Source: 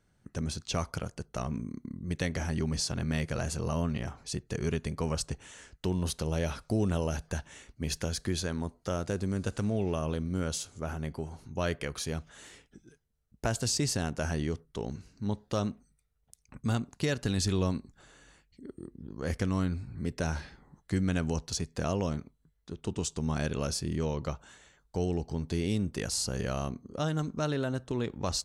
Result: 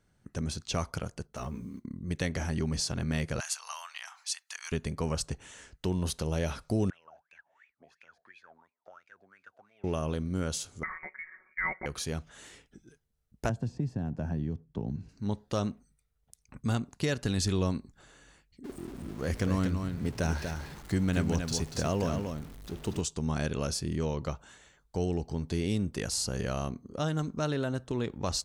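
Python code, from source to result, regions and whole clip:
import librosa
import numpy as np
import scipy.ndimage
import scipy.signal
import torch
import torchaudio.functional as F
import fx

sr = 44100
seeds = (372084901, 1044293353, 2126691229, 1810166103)

y = fx.chain(x, sr, fx.block_float(bits=7),
    fx.ensemble(), at=(1.27, 1.85))
y = fx.chain(y, sr, fx.steep_highpass(hz=850.0, slope=36),
    fx.tilt_shelf(db=-5.5, hz=1200.0), at=(3.4, 4.72))
y = fx.chain(y, sr, fx.wah_lfo(hz=2.9, low_hz=660.0, high_hz=2500.0, q=18.0),
    fx.band_squash(depth_pct=70), at=(6.9, 9.84))
y = fx.chain(y, sr, fx.highpass(hz=480.0, slope=24),
    fx.comb(ms=5.4, depth=0.8),
    fx.freq_invert(carrier_hz=2600), at=(10.83, 11.86))
y = fx.chain(y, sr, fx.bandpass_q(hz=190.0, q=0.78),
    fx.comb(ms=1.2, depth=0.35),
    fx.band_squash(depth_pct=100), at=(13.49, 15.09))
y = fx.chain(y, sr, fx.zero_step(step_db=-43.0),
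    fx.echo_single(ms=239, db=-6.0), at=(18.64, 23.01))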